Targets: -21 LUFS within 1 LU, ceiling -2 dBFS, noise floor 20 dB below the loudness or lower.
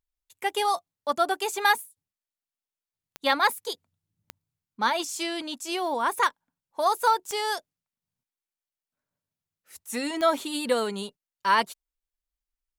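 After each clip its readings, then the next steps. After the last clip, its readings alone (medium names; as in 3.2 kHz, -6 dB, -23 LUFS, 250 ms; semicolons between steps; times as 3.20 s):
clicks found 4; loudness -26.5 LUFS; peak level -8.5 dBFS; loudness target -21.0 LUFS
-> de-click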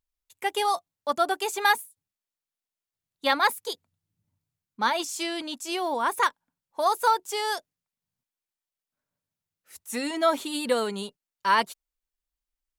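clicks found 0; loudness -26.5 LUFS; peak level -8.5 dBFS; loudness target -21.0 LUFS
-> trim +5.5 dB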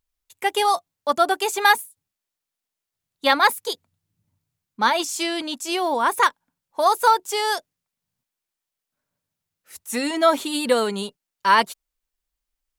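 loudness -21.0 LUFS; peak level -3.0 dBFS; noise floor -86 dBFS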